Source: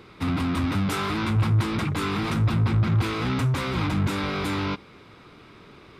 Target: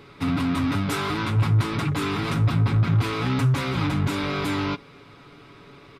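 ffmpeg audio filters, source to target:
ffmpeg -i in.wav -af "aecho=1:1:7.1:0.5" out.wav

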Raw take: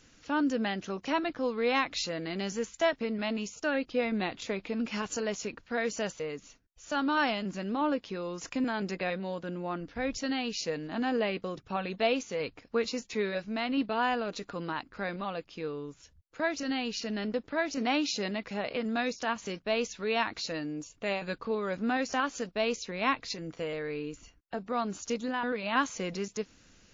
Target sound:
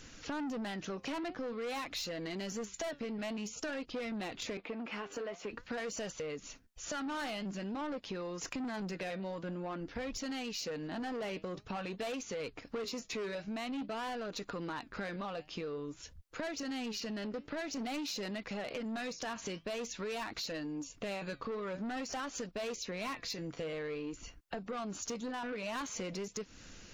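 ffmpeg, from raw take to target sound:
ffmpeg -i in.wav -filter_complex "[0:a]flanger=delay=0.5:depth=7.1:regen=81:speed=0.49:shape=triangular,asoftclip=type=tanh:threshold=-35.5dB,asettb=1/sr,asplit=3[link_01][link_02][link_03];[link_01]atrim=end=4.574[link_04];[link_02]atrim=start=4.57:end=5.51,asetpts=PTS-STARTPTS,afade=type=in:duration=0.004:curve=qsin,afade=type=out:start_time=0.936:duration=0.004:curve=qsin,acrossover=split=250 3000:gain=0.178 1 0.158[link_05][link_06][link_07];[link_05][link_06][link_07]amix=inputs=3:normalize=0[link_08];[link_03]atrim=start=5.506[link_09];[link_04][link_08]acrossfade=duration=0.004:curve1=hsin:curve2=qsin[link_10];[link_10][link_09]acrossfade=duration=0.004:curve1=qsin:curve2=hsin,acompressor=threshold=-49dB:ratio=6,volume=11dB" out.wav

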